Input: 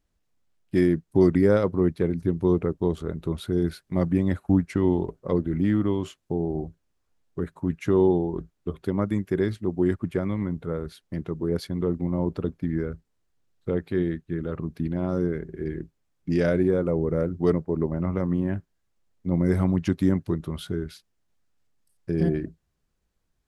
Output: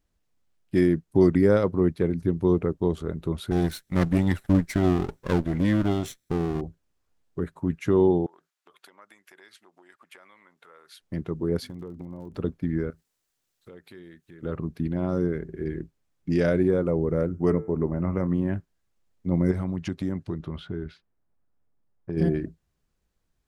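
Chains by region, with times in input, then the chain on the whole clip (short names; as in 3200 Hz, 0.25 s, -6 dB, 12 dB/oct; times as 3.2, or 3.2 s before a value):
3.51–6.61 minimum comb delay 0.53 ms + high shelf 2400 Hz +9.5 dB
8.26–11 compressor, threshold -32 dBFS + HPF 1200 Hz
11.62–12.38 notches 50/100/150/200/250 Hz + compressor 12:1, threshold -33 dBFS + crackle 61/s -48 dBFS
12.9–14.43 tilt +3 dB/oct + compressor 2.5:1, threshold -50 dBFS
17.27–18.27 Butterworth band-stop 3800 Hz, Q 1.7 + de-hum 110.3 Hz, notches 21
19.51–22.17 low-pass opened by the level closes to 1200 Hz, open at -18.5 dBFS + compressor 2:1, threshold -29 dBFS
whole clip: dry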